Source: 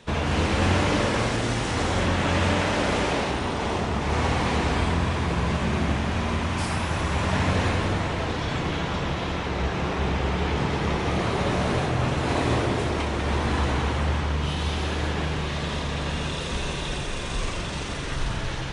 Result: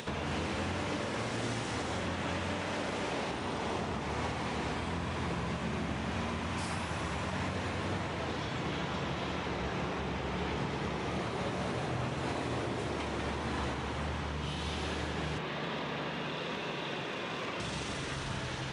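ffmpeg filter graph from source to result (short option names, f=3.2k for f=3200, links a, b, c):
-filter_complex "[0:a]asettb=1/sr,asplit=3[a][b][c];[a]atrim=end=15.384[d];[b]atrim=start=15.38:end=17.6,asetpts=PTS-STARTPTS,afade=t=in:d=0.004:c=qsin,afade=t=out:st=2.216:d=0.004:c=qsin,acrusher=bits=3:mode=log:mix=0:aa=0.000001,highpass=180,lowpass=3.3k[e];[c]atrim=start=17.596[f];[d][e]acrossfade=d=0.004:c1=hsin:c2=qsin[g];[g][f]acrossfade=d=0.004:c1=qsin:c2=hsin,acompressor=mode=upward:threshold=-26dB:ratio=2.5,highpass=98,alimiter=limit=-19dB:level=0:latency=1:release=445,volume=-6dB"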